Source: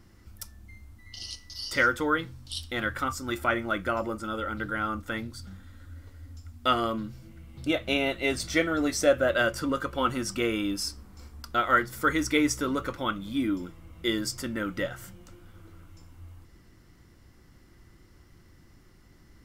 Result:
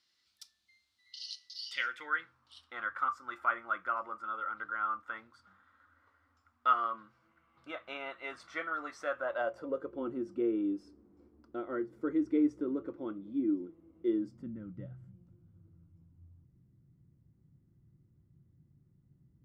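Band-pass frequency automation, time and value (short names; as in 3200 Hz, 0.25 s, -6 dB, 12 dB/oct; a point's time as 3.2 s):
band-pass, Q 3.3
1.57 s 4000 Hz
2.4 s 1200 Hz
9.13 s 1200 Hz
9.98 s 340 Hz
14.12 s 340 Hz
14.61 s 140 Hz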